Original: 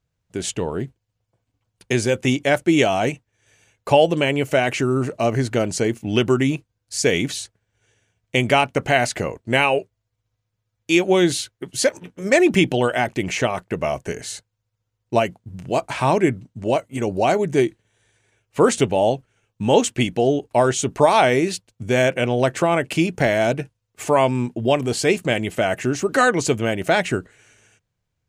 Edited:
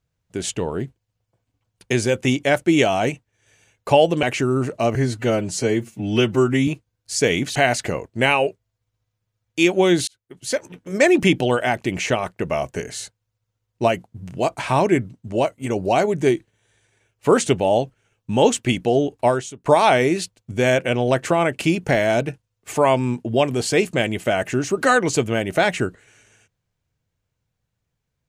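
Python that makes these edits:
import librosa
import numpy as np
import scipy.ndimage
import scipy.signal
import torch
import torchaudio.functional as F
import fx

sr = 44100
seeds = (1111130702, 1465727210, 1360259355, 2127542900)

y = fx.edit(x, sr, fx.cut(start_s=4.23, length_s=0.4),
    fx.stretch_span(start_s=5.35, length_s=1.15, factor=1.5),
    fx.cut(start_s=7.38, length_s=1.49),
    fx.fade_in_span(start_s=11.39, length_s=0.78),
    fx.fade_out_to(start_s=20.58, length_s=0.39, curve='qua', floor_db=-21.0), tone=tone)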